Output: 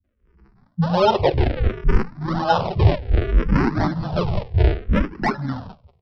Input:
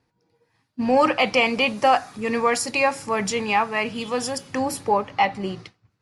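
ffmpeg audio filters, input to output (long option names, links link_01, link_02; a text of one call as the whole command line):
ffmpeg -i in.wav -filter_complex "[0:a]lowshelf=frequency=210:gain=-6.5,aresample=16000,acrusher=samples=24:mix=1:aa=0.000001:lfo=1:lforange=38.4:lforate=0.7,aresample=44100,acontrast=77,asetrate=31183,aresample=44100,atempo=1.41421,lowpass=frequency=1400:poles=1,acrossover=split=200[link_01][link_02];[link_02]adelay=40[link_03];[link_01][link_03]amix=inputs=2:normalize=0,dynaudnorm=framelen=180:gausssize=3:maxgain=14dB,asplit=2[link_04][link_05];[link_05]afreqshift=-0.63[link_06];[link_04][link_06]amix=inputs=2:normalize=1,volume=-1dB" out.wav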